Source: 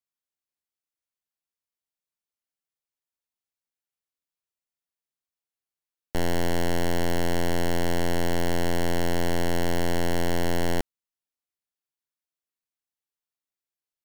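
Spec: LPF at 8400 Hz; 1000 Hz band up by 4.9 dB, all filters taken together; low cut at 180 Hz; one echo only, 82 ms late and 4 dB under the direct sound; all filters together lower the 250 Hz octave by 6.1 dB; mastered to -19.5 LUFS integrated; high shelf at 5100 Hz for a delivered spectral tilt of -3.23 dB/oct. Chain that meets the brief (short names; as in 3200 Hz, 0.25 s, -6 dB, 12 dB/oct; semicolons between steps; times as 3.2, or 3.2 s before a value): HPF 180 Hz; LPF 8400 Hz; bell 250 Hz -7.5 dB; bell 1000 Hz +7 dB; high shelf 5100 Hz +6.5 dB; echo 82 ms -4 dB; gain +8.5 dB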